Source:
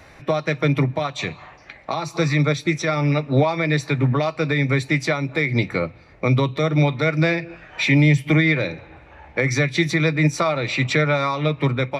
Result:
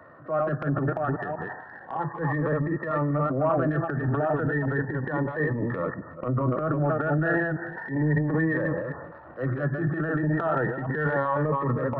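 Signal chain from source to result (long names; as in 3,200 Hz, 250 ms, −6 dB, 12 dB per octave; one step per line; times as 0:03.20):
delay that plays each chunk backwards 194 ms, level −5 dB
high-pass filter 95 Hz 24 dB per octave
low-shelf EQ 340 Hz −12 dB
in parallel at −2.5 dB: downward compressor, threshold −35 dBFS, peak gain reduction 17 dB
on the sum: linear-phase brick-wall low-pass 1,900 Hz
transient designer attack −11 dB, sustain +9 dB
phaser whose notches keep moving one way rising 0.33 Hz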